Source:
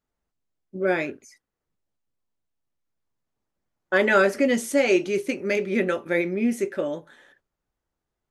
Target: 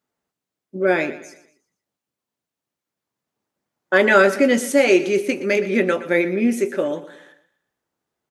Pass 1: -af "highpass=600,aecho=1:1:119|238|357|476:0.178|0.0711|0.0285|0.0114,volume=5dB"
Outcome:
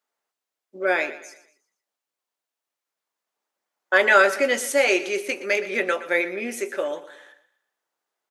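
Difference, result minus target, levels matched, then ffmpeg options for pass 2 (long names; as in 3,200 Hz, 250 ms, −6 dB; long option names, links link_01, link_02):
125 Hz band −15.0 dB
-af "highpass=150,aecho=1:1:119|238|357|476:0.178|0.0711|0.0285|0.0114,volume=5dB"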